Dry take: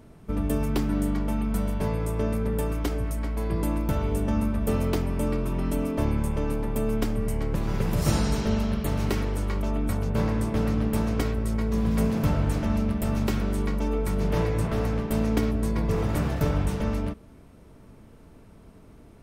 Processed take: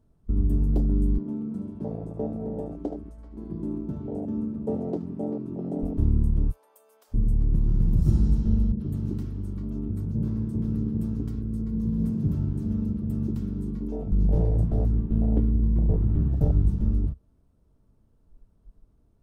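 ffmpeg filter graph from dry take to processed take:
ffmpeg -i in.wav -filter_complex "[0:a]asettb=1/sr,asplit=3[link_01][link_02][link_03];[link_01]atrim=end=1.184[link_04];[link_02]atrim=start=1.18:end=5.83,asetpts=PTS-STARTPTS,afade=type=in:duration=0.004:curve=qsin,afade=type=out:start_time=4.646:duration=0.004:curve=qsin,highpass=270,lowpass=7600,tiltshelf=frequency=1200:gain=4.5,aecho=1:1:74:0.316,atrim=end_sample=205065[link_05];[link_03]atrim=start=5.826[link_06];[link_04][link_05]acrossfade=duration=0.004:curve1=hsin:curve2=qsin[link_07];[link_07][link_06]acrossfade=duration=0.004:curve1=qsin:curve2=hsin,asettb=1/sr,asplit=3[link_08][link_09][link_10];[link_08]atrim=end=6.514[link_11];[link_09]atrim=start=6.51:end=7.14,asetpts=PTS-STARTPTS,afade=type=in:duration=0.004:curve=qsin,afade=type=out:start_time=0.626:duration=0.004:curve=qsin,highpass=frequency=560:width=0.5412,highpass=frequency=560:width=1.3066,acompressor=threshold=-37dB:ratio=4:attack=3.2:release=140:knee=1:detection=peak,highshelf=frequency=5900:gain=9[link_12];[link_10]atrim=start=7.136[link_13];[link_11][link_12]acrossfade=duration=0.004:curve1=hsin:curve2=qsin[link_14];[link_14][link_13]acrossfade=duration=0.004:curve1=qsin:curve2=hsin,asettb=1/sr,asplit=3[link_15][link_16][link_17];[link_15]atrim=end=8.724[link_18];[link_16]atrim=start=8.72:end=14.12,asetpts=PTS-STARTPTS,afade=type=in:duration=0.004:curve=qsin,afade=type=out:start_time=5.396:duration=0.004:curve=qsin,highpass=110,acrossover=split=700[link_19][link_20];[link_20]adelay=80[link_21];[link_19][link_21]amix=inputs=2:normalize=0,atrim=end_sample=238140[link_22];[link_17]atrim=start=14.116[link_23];[link_18][link_22]acrossfade=duration=0.004:curve1=hsin:curve2=qsin[link_24];[link_24][link_23]acrossfade=duration=0.004:curve1=qsin:curve2=hsin,asettb=1/sr,asplit=3[link_25][link_26][link_27];[link_25]atrim=end=14.924[link_28];[link_26]atrim=start=14.92:end=16.33,asetpts=PTS-STARTPTS,afade=type=in:duration=0.004:curve=qsin,afade=type=out:start_time=1.406:duration=0.004:curve=qsin,lowpass=frequency=3300:width=0.5412,lowpass=frequency=3300:width=1.3066,acrusher=bits=9:mode=log:mix=0:aa=0.000001[link_29];[link_27]atrim=start=16.326[link_30];[link_28][link_29]acrossfade=duration=0.004:curve1=hsin:curve2=qsin[link_31];[link_31][link_30]acrossfade=duration=0.004:curve1=qsin:curve2=hsin,lowshelf=frequency=120:gain=12,afwtdn=0.126,equalizer=frequency=2200:width=1.7:gain=-8.5,volume=-3.5dB" out.wav

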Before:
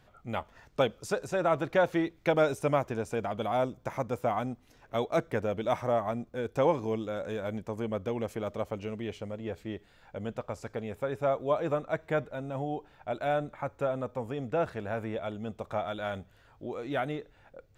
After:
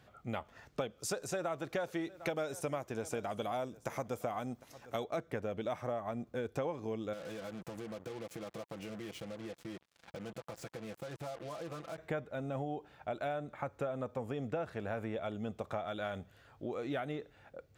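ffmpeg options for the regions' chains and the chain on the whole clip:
ffmpeg -i in.wav -filter_complex "[0:a]asettb=1/sr,asplit=3[link_01][link_02][link_03];[link_01]atrim=end=0.994[link_04];[link_02]atrim=start=0.99:end=5.04,asetpts=PTS-STARTPTS,afade=type=in:duration=0.004:curve=qsin,afade=type=out:start_time=4.046:duration=0.004:curve=qsin,bass=frequency=250:gain=-2,treble=frequency=4000:gain=7,aecho=1:1:753:0.0708,atrim=end_sample=178605[link_05];[link_03]atrim=start=5.036[link_06];[link_04][link_05]acrossfade=duration=0.004:curve1=hsin:curve2=qsin[link_07];[link_07][link_06]acrossfade=duration=0.004:curve1=qsin:curve2=hsin,asettb=1/sr,asplit=3[link_08][link_09][link_10];[link_08]atrim=end=7.134[link_11];[link_09]atrim=start=7.13:end=11.98,asetpts=PTS-STARTPTS,afade=type=in:duration=0.004:curve=qsin,afade=type=out:start_time=4.846:duration=0.004:curve=qsin,aecho=1:1:6:0.74,atrim=end_sample=213885,acompressor=threshold=-41dB:ratio=6:attack=3.2:release=140:knee=1:detection=peak,acrusher=bits=7:mix=0:aa=0.5[link_12];[link_10]atrim=start=11.976[link_13];[link_11][link_12]acrossfade=duration=0.004:curve1=hsin:curve2=qsin[link_14];[link_14][link_13]acrossfade=duration=0.004:curve1=qsin:curve2=hsin,highpass=68,bandreject=frequency=950:width=14,acompressor=threshold=-34dB:ratio=6" out.wav

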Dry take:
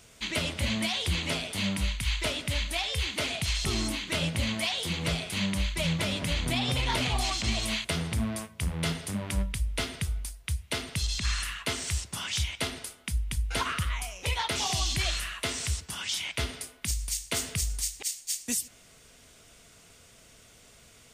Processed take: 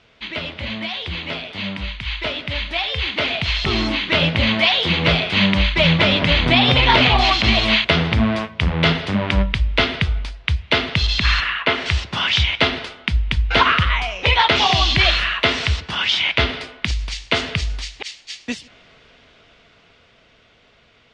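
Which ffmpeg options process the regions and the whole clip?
ffmpeg -i in.wav -filter_complex "[0:a]asettb=1/sr,asplit=3[link_01][link_02][link_03];[link_01]atrim=end=11.404[link_04];[link_02]atrim=start=11.4:end=11.86,asetpts=PTS-STARTPTS,afade=type=in:duration=0.004:curve=qsin,afade=type=out:start_time=0.456:duration=0.004:curve=qsin,highpass=frequency=88:poles=1,bass=frequency=250:gain=-5,treble=frequency=4000:gain=-12[link_05];[link_03]atrim=start=11.856[link_06];[link_04][link_05]acrossfade=duration=0.004:curve1=hsin:curve2=qsin[link_07];[link_07][link_06]acrossfade=duration=0.004:curve1=qsin:curve2=hsin,lowpass=frequency=3800:width=0.5412,lowpass=frequency=3800:width=1.3066,lowshelf=frequency=250:gain=-6.5,dynaudnorm=framelen=420:gausssize=17:maxgain=12.5dB,volume=4.5dB" out.wav

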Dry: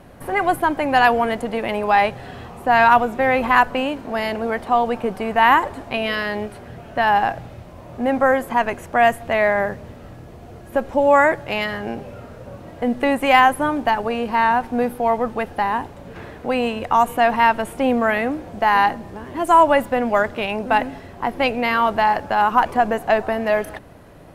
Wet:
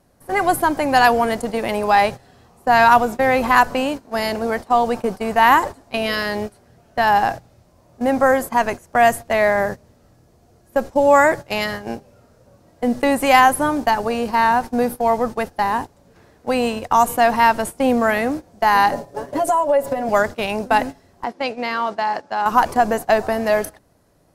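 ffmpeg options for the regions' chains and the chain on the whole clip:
ffmpeg -i in.wav -filter_complex "[0:a]asettb=1/sr,asplit=3[link_01][link_02][link_03];[link_01]atrim=end=18.924[link_04];[link_02]atrim=start=18.92:end=20.09,asetpts=PTS-STARTPTS,afade=type=in:duration=0.004:curve=qsin,afade=type=out:start_time=1.166:duration=0.004:curve=qsin,equalizer=frequency=570:width=2.1:gain=13,acompressor=threshold=-20dB:ratio=6:attack=3.2:release=140:knee=1:detection=peak,aecho=1:1:7.1:0.86,atrim=end_sample=51597[link_05];[link_03]atrim=start=20.086[link_06];[link_04][link_05]acrossfade=duration=0.004:curve1=hsin:curve2=qsin[link_07];[link_07][link_06]acrossfade=duration=0.004:curve1=qsin:curve2=hsin,asettb=1/sr,asplit=3[link_08][link_09][link_10];[link_08]atrim=end=21.244[link_11];[link_09]atrim=start=21.24:end=22.46,asetpts=PTS-STARTPTS,afade=type=in:duration=0.004:curve=qsin,afade=type=out:start_time=1.216:duration=0.004:curve=qsin,highpass=200,lowpass=6100,acompressor=threshold=-27dB:ratio=1.5:attack=3.2:release=140:knee=1:detection=peak[link_12];[link_10]atrim=start=22.456[link_13];[link_11][link_12]acrossfade=duration=0.004:curve1=hsin:curve2=qsin[link_14];[link_14][link_13]acrossfade=duration=0.004:curve1=qsin:curve2=hsin,highshelf=frequency=3900:width_type=q:width=1.5:gain=8,agate=range=-16dB:threshold=-26dB:ratio=16:detection=peak,volume=1.5dB" out.wav

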